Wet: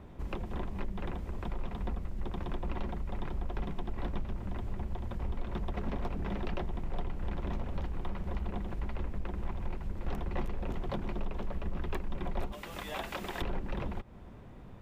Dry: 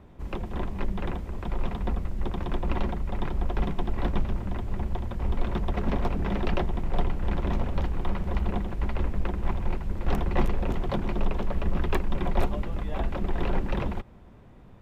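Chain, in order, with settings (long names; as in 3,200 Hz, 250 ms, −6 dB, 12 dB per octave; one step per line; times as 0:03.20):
0:12.52–0:13.42: spectral tilt +4 dB per octave
downward compressor 2.5 to 1, threshold −36 dBFS, peak gain reduction 13 dB
level +1 dB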